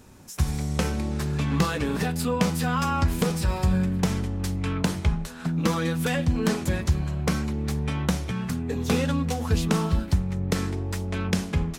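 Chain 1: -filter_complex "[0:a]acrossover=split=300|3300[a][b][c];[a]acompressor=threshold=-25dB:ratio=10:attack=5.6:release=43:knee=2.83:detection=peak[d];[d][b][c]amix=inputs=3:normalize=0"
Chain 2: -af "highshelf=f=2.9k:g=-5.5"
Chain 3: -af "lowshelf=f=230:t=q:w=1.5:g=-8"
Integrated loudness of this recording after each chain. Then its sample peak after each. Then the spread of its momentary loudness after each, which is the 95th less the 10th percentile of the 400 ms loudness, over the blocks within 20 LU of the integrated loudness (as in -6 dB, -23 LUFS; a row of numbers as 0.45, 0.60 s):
-27.5, -26.5, -29.5 LUFS; -10.0, -10.0, -10.5 dBFS; 4, 5, 7 LU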